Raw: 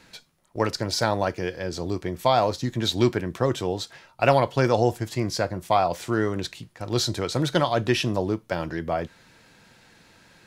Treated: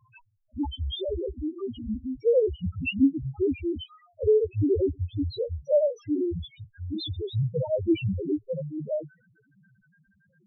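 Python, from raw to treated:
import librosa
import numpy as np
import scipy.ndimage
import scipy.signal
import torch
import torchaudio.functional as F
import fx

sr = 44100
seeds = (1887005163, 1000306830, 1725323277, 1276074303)

y = fx.pitch_glide(x, sr, semitones=-7.5, runs='ending unshifted')
y = fx.spec_topn(y, sr, count=1)
y = y * librosa.db_to_amplitude(7.5)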